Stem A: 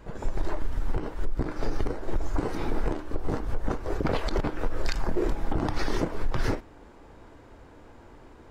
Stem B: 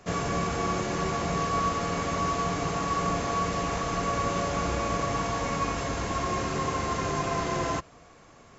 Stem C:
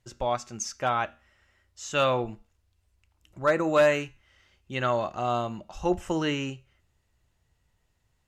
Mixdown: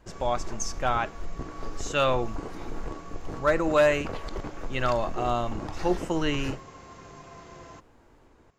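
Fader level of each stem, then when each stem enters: −8.0, −18.0, 0.0 decibels; 0.00, 0.00, 0.00 seconds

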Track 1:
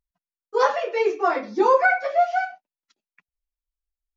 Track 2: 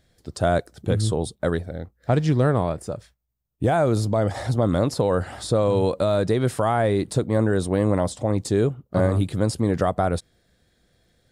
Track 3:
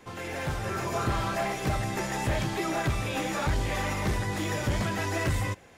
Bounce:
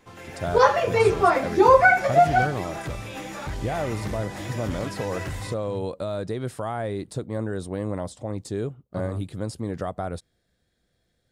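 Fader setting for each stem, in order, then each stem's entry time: +2.5, −8.5, −5.0 decibels; 0.00, 0.00, 0.00 seconds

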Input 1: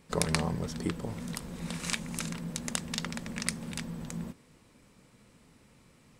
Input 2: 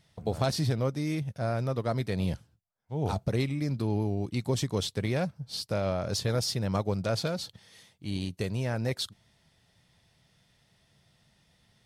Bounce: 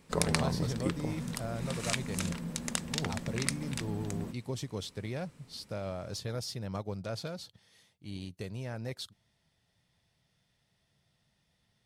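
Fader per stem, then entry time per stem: −0.5, −8.5 decibels; 0.00, 0.00 seconds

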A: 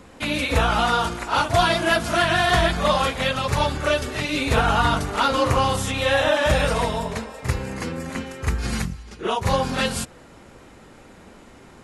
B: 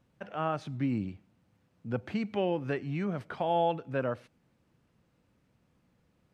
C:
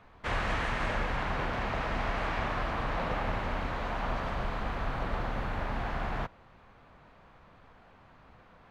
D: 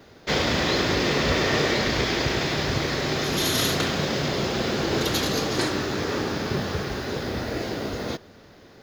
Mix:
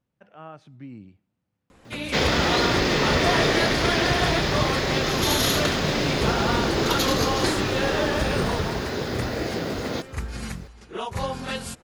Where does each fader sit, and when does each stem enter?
−7.5, −10.0, −3.5, +1.0 decibels; 1.70, 0.00, 2.45, 1.85 seconds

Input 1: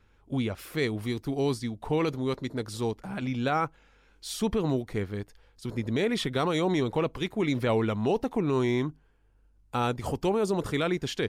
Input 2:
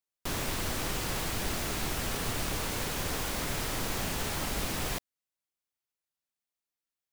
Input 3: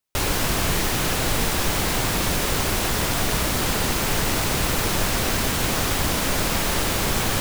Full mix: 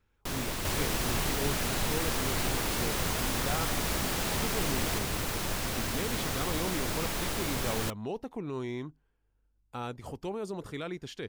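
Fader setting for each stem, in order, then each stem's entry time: −10.0, −1.5, −10.5 decibels; 0.00, 0.00, 0.50 seconds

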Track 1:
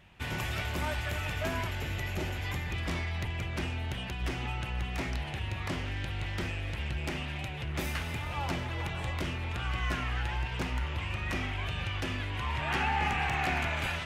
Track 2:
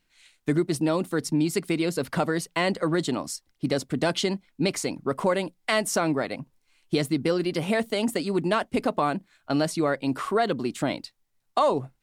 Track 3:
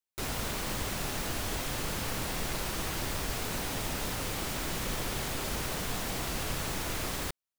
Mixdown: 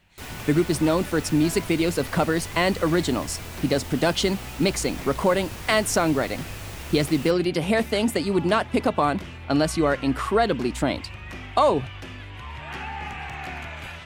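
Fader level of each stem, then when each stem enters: −4.0, +3.0, −5.0 decibels; 0.00, 0.00, 0.00 seconds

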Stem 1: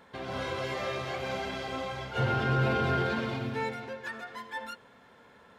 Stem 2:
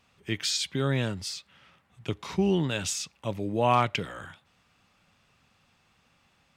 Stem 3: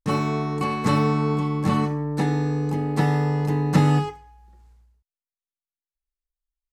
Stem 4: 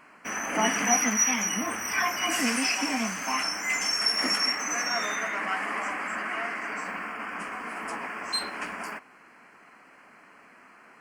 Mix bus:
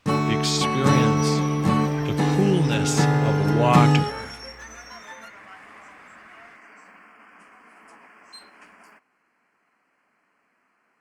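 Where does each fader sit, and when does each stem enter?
−4.5, +3.0, +1.0, −15.0 decibels; 0.55, 0.00, 0.00, 0.00 seconds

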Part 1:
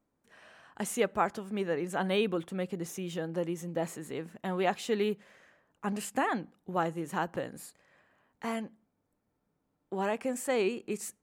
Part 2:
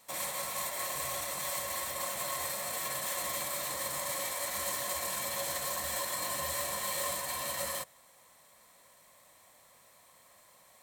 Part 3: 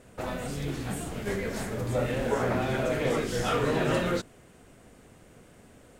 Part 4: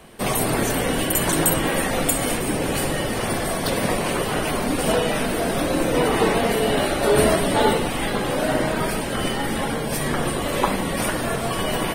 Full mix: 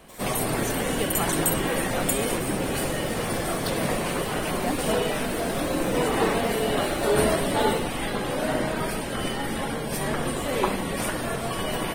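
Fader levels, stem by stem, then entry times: −3.0, −9.0, −9.0, −4.5 decibels; 0.00, 0.00, 0.00, 0.00 seconds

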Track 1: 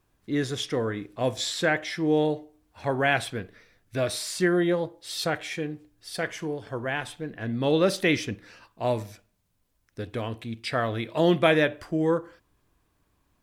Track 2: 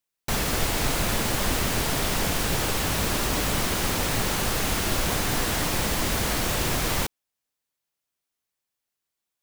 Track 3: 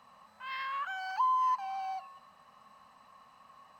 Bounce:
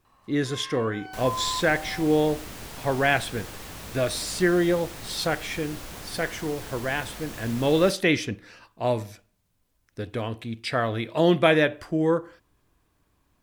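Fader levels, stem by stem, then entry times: +1.5, −14.5, −3.5 decibels; 0.00, 0.85, 0.05 seconds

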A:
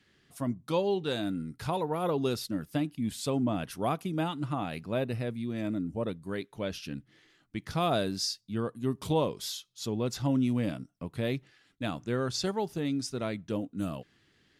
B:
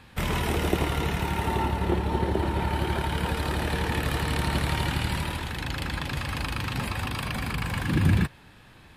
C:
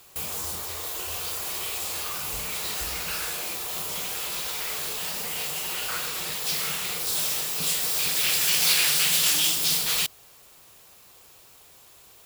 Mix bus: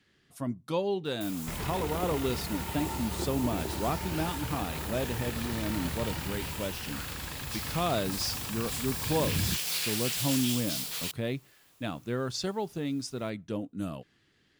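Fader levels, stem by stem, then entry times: −1.5, −10.0, −11.0 decibels; 0.00, 1.30, 1.05 seconds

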